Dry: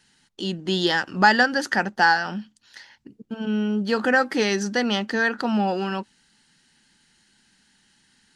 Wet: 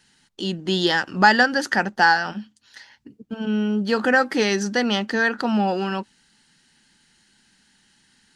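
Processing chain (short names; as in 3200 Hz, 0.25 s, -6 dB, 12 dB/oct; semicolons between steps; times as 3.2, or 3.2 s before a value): 2.31–3.33 notch comb 180 Hz; gain +1.5 dB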